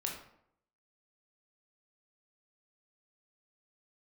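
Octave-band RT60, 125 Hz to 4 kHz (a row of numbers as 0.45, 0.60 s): 0.75, 0.75, 0.75, 0.70, 0.55, 0.45 s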